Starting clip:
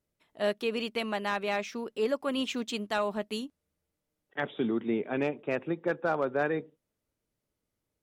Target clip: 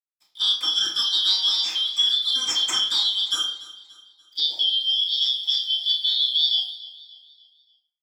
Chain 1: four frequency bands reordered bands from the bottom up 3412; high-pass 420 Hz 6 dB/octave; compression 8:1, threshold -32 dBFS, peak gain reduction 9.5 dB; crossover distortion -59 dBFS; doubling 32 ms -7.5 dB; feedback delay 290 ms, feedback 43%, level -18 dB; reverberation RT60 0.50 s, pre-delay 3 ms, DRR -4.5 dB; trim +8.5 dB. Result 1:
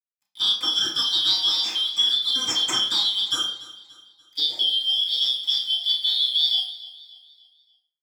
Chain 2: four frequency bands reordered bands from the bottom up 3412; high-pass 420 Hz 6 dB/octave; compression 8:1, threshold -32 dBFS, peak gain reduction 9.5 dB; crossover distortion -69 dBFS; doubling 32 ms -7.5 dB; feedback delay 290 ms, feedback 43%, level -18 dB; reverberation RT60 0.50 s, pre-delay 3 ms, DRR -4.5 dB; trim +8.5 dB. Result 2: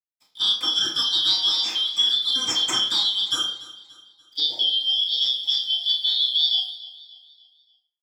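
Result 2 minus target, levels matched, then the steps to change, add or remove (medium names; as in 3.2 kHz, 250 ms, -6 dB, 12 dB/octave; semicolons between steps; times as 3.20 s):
500 Hz band +6.5 dB
change: high-pass 1.3 kHz 6 dB/octave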